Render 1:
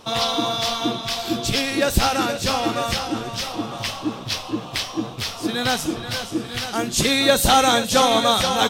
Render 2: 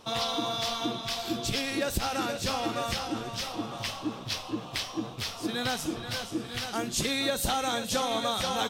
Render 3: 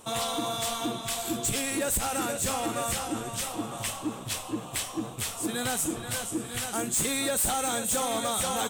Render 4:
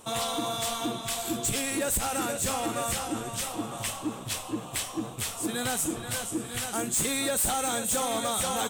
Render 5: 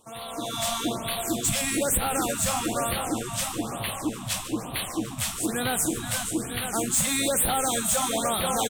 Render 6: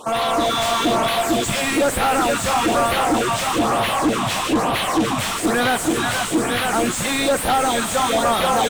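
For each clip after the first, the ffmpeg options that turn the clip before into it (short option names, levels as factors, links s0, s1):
-af "acompressor=threshold=0.126:ratio=6,volume=0.447"
-af "highshelf=f=6400:t=q:w=3:g=8.5,asoftclip=type=hard:threshold=0.0596,volume=1.12"
-af anull
-filter_complex "[0:a]asplit=8[s0][s1][s2][s3][s4][s5][s6][s7];[s1]adelay=145,afreqshift=-59,volume=0.2[s8];[s2]adelay=290,afreqshift=-118,volume=0.126[s9];[s3]adelay=435,afreqshift=-177,volume=0.0794[s10];[s4]adelay=580,afreqshift=-236,volume=0.0501[s11];[s5]adelay=725,afreqshift=-295,volume=0.0313[s12];[s6]adelay=870,afreqshift=-354,volume=0.0197[s13];[s7]adelay=1015,afreqshift=-413,volume=0.0124[s14];[s0][s8][s9][s10][s11][s12][s13][s14]amix=inputs=8:normalize=0,dynaudnorm=f=100:g=9:m=3.98,afftfilt=real='re*(1-between(b*sr/1024,350*pow(6600/350,0.5+0.5*sin(2*PI*1.1*pts/sr))/1.41,350*pow(6600/350,0.5+0.5*sin(2*PI*1.1*pts/sr))*1.41))':imag='im*(1-between(b*sr/1024,350*pow(6600/350,0.5+0.5*sin(2*PI*1.1*pts/sr))/1.41,350*pow(6600/350,0.5+0.5*sin(2*PI*1.1*pts/sr))*1.41))':win_size=1024:overlap=0.75,volume=0.376"
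-filter_complex "[0:a]asplit=2[s0][s1];[s1]highpass=f=720:p=1,volume=28.2,asoftclip=type=tanh:threshold=0.188[s2];[s0][s2]amix=inputs=2:normalize=0,lowpass=f=1600:p=1,volume=0.501,volume=1.88"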